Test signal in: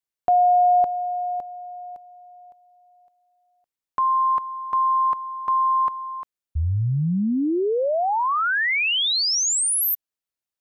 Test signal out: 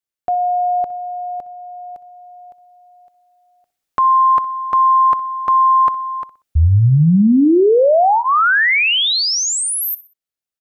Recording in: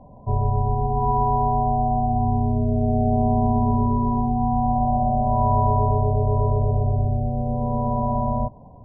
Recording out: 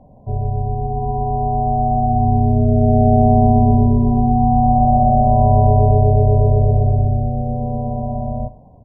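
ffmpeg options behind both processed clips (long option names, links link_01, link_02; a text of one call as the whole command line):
ffmpeg -i in.wav -af "dynaudnorm=framelen=190:gausssize=21:maxgain=11dB,bandreject=frequency=990:width=7.3,aecho=1:1:62|124|186:0.133|0.0453|0.0154" out.wav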